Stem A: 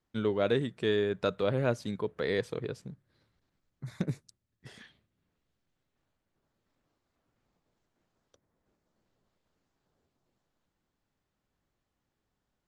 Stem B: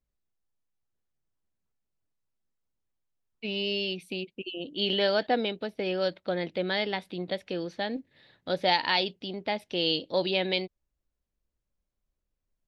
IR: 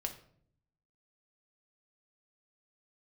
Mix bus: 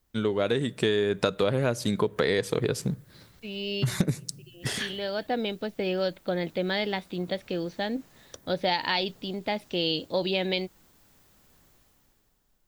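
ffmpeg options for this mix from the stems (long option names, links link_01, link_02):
-filter_complex "[0:a]aemphasis=mode=production:type=50kf,dynaudnorm=framelen=140:gausssize=13:maxgain=15dB,volume=3dB,asplit=3[link_01][link_02][link_03];[link_02]volume=-17.5dB[link_04];[1:a]lowshelf=frequency=160:gain=8.5,volume=0.5dB[link_05];[link_03]apad=whole_len=558888[link_06];[link_05][link_06]sidechaincompress=threshold=-33dB:ratio=8:attack=16:release=932[link_07];[2:a]atrim=start_sample=2205[link_08];[link_04][link_08]afir=irnorm=-1:irlink=0[link_09];[link_01][link_07][link_09]amix=inputs=3:normalize=0,acompressor=threshold=-21dB:ratio=12"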